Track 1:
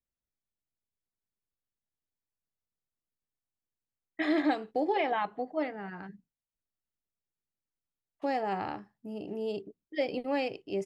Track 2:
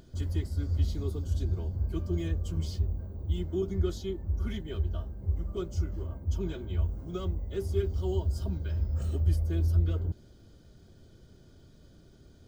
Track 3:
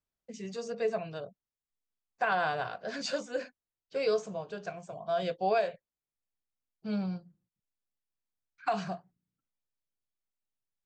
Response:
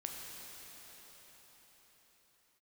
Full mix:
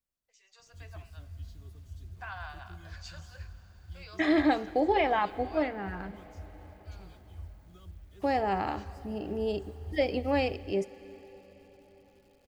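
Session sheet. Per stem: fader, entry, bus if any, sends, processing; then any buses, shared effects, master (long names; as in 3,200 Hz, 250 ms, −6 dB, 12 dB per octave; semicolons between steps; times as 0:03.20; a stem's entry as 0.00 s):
−1.0 dB, 0.00 s, send −13.5 dB, no processing
−19.0 dB, 0.60 s, send −12.5 dB, parametric band 400 Hz −10 dB 1.7 octaves; bit reduction 9 bits
−15.5 dB, 0.00 s, send −8.5 dB, high-pass filter 830 Hz 24 dB per octave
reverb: on, pre-delay 6 ms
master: automatic gain control gain up to 3 dB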